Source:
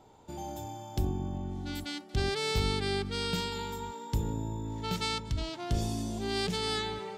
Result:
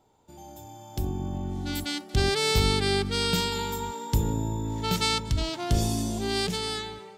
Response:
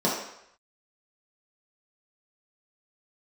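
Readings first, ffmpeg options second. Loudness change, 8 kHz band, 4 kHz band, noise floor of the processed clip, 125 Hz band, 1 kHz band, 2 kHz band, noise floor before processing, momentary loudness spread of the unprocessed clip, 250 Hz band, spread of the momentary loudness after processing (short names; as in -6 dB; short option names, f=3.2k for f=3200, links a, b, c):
+6.0 dB, +9.0 dB, +6.5 dB, -47 dBFS, +5.5 dB, +5.0 dB, +6.0 dB, -50 dBFS, 9 LU, +5.0 dB, 11 LU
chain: -af "highshelf=f=7.8k:g=8,dynaudnorm=f=320:g=7:m=14dB,volume=-7.5dB"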